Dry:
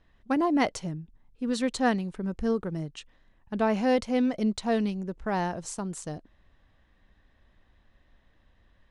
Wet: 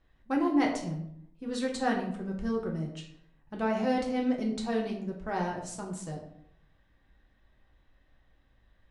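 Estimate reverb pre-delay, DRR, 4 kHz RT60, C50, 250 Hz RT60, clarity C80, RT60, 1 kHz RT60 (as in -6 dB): 3 ms, -1.0 dB, 0.45 s, 7.0 dB, 0.80 s, 9.5 dB, 0.70 s, 0.65 s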